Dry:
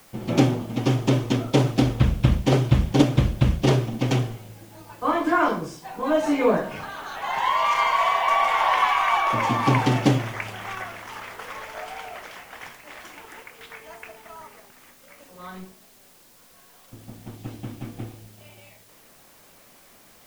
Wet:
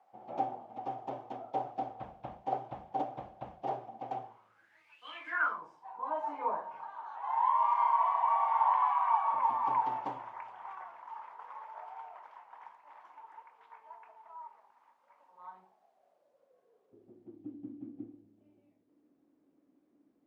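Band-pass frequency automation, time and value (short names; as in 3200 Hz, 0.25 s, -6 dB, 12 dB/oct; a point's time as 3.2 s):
band-pass, Q 8.5
4.22 s 770 Hz
5.08 s 3200 Hz
5.65 s 930 Hz
15.48 s 930 Hz
17.55 s 290 Hz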